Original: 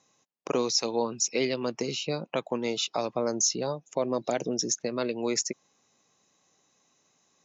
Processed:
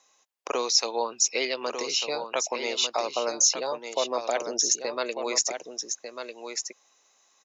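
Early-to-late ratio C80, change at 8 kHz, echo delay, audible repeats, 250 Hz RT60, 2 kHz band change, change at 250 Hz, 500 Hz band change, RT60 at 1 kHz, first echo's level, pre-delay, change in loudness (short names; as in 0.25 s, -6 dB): none, n/a, 1.197 s, 1, none, +5.0 dB, -8.0 dB, 0.0 dB, none, -7.5 dB, none, +2.5 dB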